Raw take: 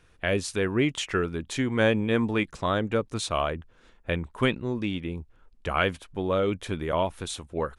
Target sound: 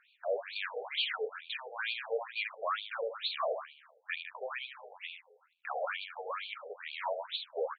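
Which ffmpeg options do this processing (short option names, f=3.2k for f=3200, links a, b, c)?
-filter_complex "[0:a]highshelf=f=4.1k:g=10,asplit=2[a][b];[b]aecho=0:1:77|154|231|308|385|462:0.355|0.188|0.0997|0.0528|0.028|0.0148[c];[a][c]amix=inputs=2:normalize=0,asoftclip=type=hard:threshold=-24.5dB,afftfilt=real='re*between(b*sr/1024,550*pow(3300/550,0.5+0.5*sin(2*PI*2.2*pts/sr))/1.41,550*pow(3300/550,0.5+0.5*sin(2*PI*2.2*pts/sr))*1.41)':imag='im*between(b*sr/1024,550*pow(3300/550,0.5+0.5*sin(2*PI*2.2*pts/sr))/1.41,550*pow(3300/550,0.5+0.5*sin(2*PI*2.2*pts/sr))*1.41)':win_size=1024:overlap=0.75"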